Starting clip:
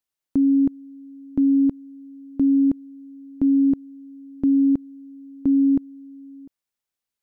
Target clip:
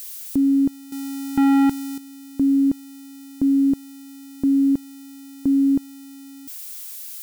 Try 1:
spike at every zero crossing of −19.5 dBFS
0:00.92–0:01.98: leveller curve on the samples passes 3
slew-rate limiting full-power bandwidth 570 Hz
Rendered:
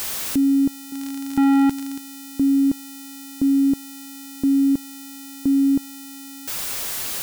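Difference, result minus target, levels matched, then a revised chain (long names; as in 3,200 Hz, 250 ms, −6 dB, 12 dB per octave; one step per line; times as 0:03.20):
spike at every zero crossing: distortion +11 dB
spike at every zero crossing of −31 dBFS
0:00.92–0:01.98: leveller curve on the samples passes 3
slew-rate limiting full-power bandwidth 570 Hz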